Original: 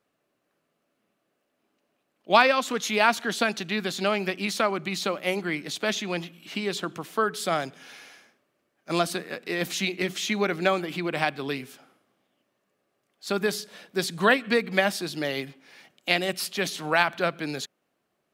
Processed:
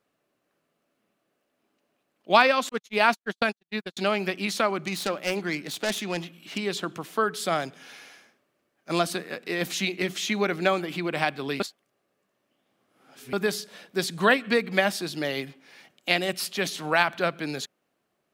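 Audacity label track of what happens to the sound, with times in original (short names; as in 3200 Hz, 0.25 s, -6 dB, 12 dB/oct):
2.690000	3.970000	gate -27 dBFS, range -60 dB
4.860000	6.580000	self-modulated delay depth 0.16 ms
11.600000	13.330000	reverse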